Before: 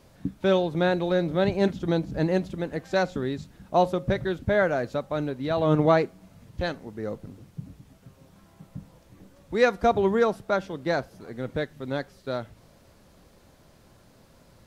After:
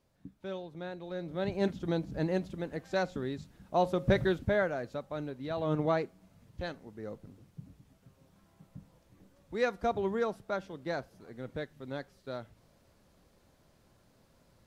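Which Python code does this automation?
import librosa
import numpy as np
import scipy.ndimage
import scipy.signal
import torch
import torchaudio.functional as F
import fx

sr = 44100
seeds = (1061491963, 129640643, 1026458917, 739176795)

y = fx.gain(x, sr, db=fx.line((0.98, -18.0), (1.63, -7.0), (3.79, -7.0), (4.2, 1.0), (4.73, -9.5)))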